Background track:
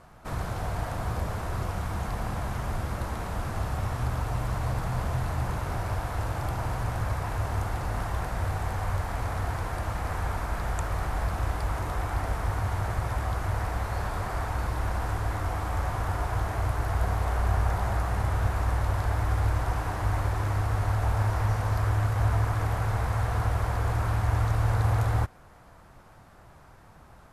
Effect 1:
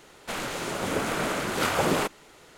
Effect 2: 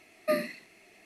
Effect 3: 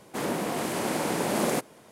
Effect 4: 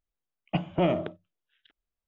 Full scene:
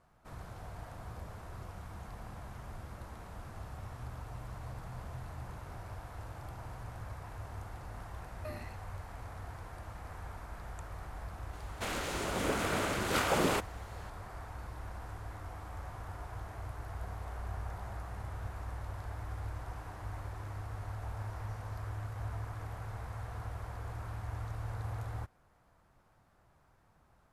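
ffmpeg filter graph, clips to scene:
-filter_complex "[0:a]volume=-15dB[a];[2:a]alimiter=limit=-24dB:level=0:latency=1:release=118,atrim=end=1.05,asetpts=PTS-STARTPTS,volume=-12dB,afade=t=in:d=0.004:c=hsin,afade=t=out:st=1.046:d=0.004:c=hsin,adelay=8170[b];[1:a]atrim=end=2.57,asetpts=PTS-STARTPTS,volume=-5dB,afade=t=in:d=0.004:c=hsin,afade=t=out:st=2.566:d=0.004:c=hsin,adelay=11530[c];[a][b][c]amix=inputs=3:normalize=0"

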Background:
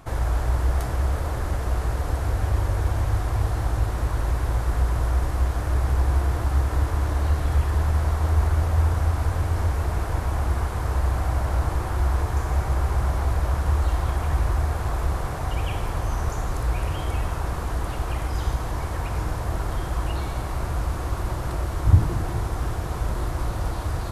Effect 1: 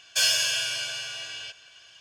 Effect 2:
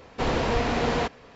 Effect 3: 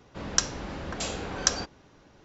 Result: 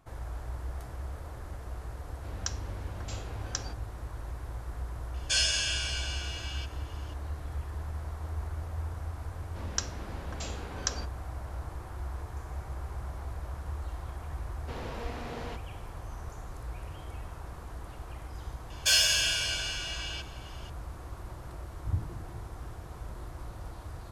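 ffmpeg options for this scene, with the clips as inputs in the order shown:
-filter_complex "[3:a]asplit=2[a][b];[1:a]asplit=2[c][d];[0:a]volume=-15.5dB[e];[c]aresample=22050,aresample=44100[f];[a]atrim=end=2.24,asetpts=PTS-STARTPTS,volume=-11.5dB,afade=t=in:d=0.004:c=hsin,afade=t=out:st=2.236:d=0.004:c=hsin,adelay=2080[g];[f]atrim=end=2,asetpts=PTS-STARTPTS,volume=-4.5dB,afade=t=in:d=0.004:c=hsin,afade=t=out:st=1.996:d=0.004:c=hsin,adelay=5140[h];[b]atrim=end=2.24,asetpts=PTS-STARTPTS,volume=-8dB,afade=t=in:d=0.004:c=hsin,afade=t=out:st=2.236:d=0.004:c=hsin,adelay=9400[i];[2:a]atrim=end=1.35,asetpts=PTS-STARTPTS,volume=-15.5dB,afade=t=in:d=0.004:c=hsin,afade=t=out:st=1.346:d=0.004:c=hsin,adelay=14490[j];[d]atrim=end=2,asetpts=PTS-STARTPTS,volume=-1dB,afade=t=in:d=0.004:c=hsin,afade=t=out:st=1.996:d=0.004:c=hsin,adelay=18700[k];[e][g][h][i][j][k]amix=inputs=6:normalize=0"

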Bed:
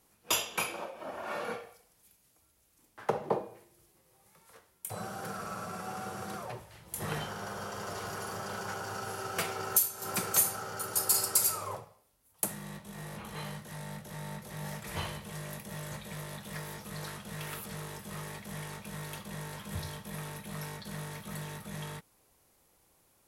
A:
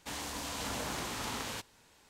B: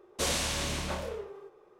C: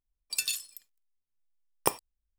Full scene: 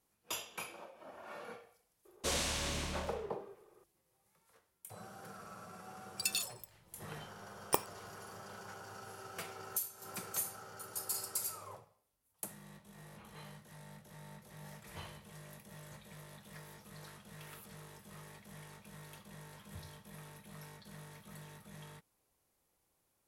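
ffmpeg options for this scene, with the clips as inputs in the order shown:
-filter_complex "[0:a]volume=-11.5dB[a];[2:a]atrim=end=1.79,asetpts=PTS-STARTPTS,volume=-5dB,afade=t=in:d=0.004:c=hsin,afade=t=out:st=1.786:d=0.004:c=hsin,adelay=2050[b];[3:a]atrim=end=2.38,asetpts=PTS-STARTPTS,volume=-4.5dB,afade=t=in:d=0.004:c=hsin,afade=t=out:st=2.376:d=0.004:c=hsin,adelay=5870[c];[a][b][c]amix=inputs=3:normalize=0"

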